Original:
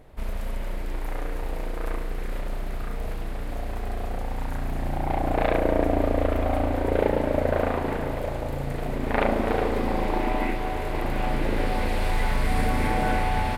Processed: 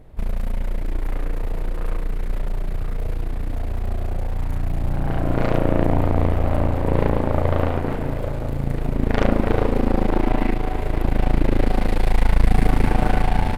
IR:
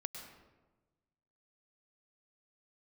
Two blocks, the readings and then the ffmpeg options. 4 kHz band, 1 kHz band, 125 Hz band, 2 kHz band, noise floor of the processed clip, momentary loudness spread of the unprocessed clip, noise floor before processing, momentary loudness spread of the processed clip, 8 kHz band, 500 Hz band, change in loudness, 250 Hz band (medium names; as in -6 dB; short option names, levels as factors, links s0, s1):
0.0 dB, 0.0 dB, +8.0 dB, -0.5 dB, -26 dBFS, 11 LU, -30 dBFS, 9 LU, no reading, +1.0 dB, +4.0 dB, +5.0 dB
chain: -af "asoftclip=type=tanh:threshold=0.398,aeval=exprs='0.355*(cos(1*acos(clip(val(0)/0.355,-1,1)))-cos(1*PI/2))+0.112*(cos(4*acos(clip(val(0)/0.355,-1,1)))-cos(4*PI/2))':c=same,lowshelf=f=350:g=9.5,volume=0.75"